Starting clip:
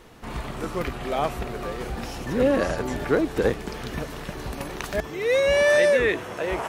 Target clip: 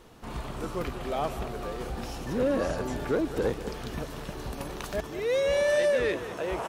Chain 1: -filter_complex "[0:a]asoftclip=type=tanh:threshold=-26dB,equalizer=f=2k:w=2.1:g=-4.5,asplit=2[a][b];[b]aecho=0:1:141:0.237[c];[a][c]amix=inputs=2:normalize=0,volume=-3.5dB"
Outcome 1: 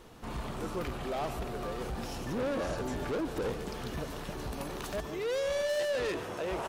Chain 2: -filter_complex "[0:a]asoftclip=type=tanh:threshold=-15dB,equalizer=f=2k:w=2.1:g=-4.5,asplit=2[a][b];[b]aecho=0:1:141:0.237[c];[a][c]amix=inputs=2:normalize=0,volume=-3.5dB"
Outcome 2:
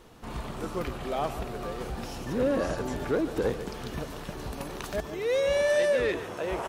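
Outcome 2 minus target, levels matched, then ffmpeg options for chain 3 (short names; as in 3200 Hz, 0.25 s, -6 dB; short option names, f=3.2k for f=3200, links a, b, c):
echo 57 ms early
-filter_complex "[0:a]asoftclip=type=tanh:threshold=-15dB,equalizer=f=2k:w=2.1:g=-4.5,asplit=2[a][b];[b]aecho=0:1:198:0.237[c];[a][c]amix=inputs=2:normalize=0,volume=-3.5dB"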